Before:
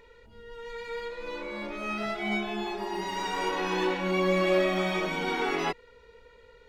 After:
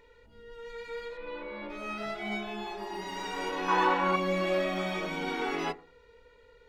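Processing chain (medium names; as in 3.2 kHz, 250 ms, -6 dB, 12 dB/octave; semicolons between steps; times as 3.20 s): 1.17–1.70 s: low-pass 3.6 kHz 24 dB/octave; 3.68–4.16 s: peaking EQ 1.1 kHz +13.5 dB 1.4 oct; FDN reverb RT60 0.41 s, low-frequency decay 1.25×, high-frequency decay 0.35×, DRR 12 dB; trim -4 dB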